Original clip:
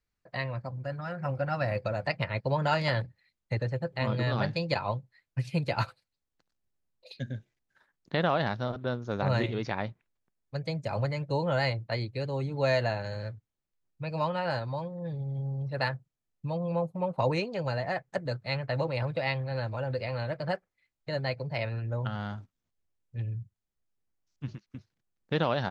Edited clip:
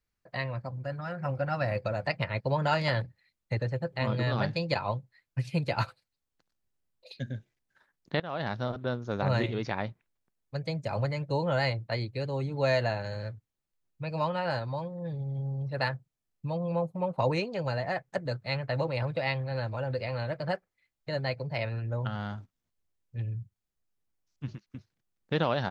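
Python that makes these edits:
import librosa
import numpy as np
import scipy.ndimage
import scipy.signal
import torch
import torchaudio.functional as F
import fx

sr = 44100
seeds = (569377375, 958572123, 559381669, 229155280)

y = fx.edit(x, sr, fx.fade_in_from(start_s=8.2, length_s=0.38, floor_db=-23.5), tone=tone)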